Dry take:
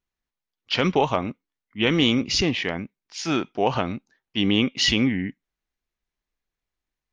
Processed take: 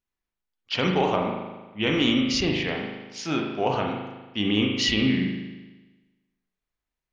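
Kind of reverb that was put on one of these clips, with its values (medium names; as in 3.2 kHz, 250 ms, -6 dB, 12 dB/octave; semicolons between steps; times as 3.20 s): spring tank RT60 1.2 s, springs 38 ms, chirp 45 ms, DRR 0.5 dB; trim -4 dB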